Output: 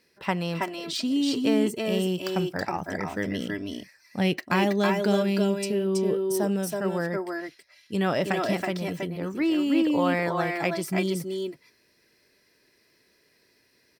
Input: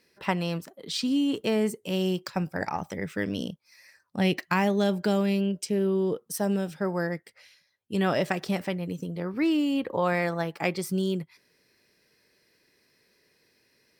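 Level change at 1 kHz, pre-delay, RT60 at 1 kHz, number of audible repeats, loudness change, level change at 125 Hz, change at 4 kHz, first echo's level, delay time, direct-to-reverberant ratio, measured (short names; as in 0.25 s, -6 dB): +2.0 dB, none, none, 1, +1.5 dB, 0.0 dB, +2.0 dB, -2.5 dB, 0.324 s, none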